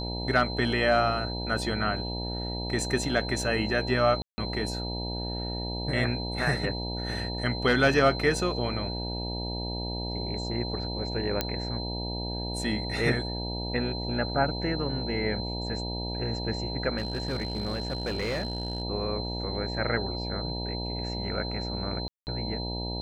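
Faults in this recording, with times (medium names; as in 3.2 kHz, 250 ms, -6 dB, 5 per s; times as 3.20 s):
buzz 60 Hz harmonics 16 -34 dBFS
whine 4.1 kHz -36 dBFS
4.22–4.38 s: dropout 160 ms
11.41 s: pop -10 dBFS
16.97–18.82 s: clipped -25.5 dBFS
22.08–22.27 s: dropout 189 ms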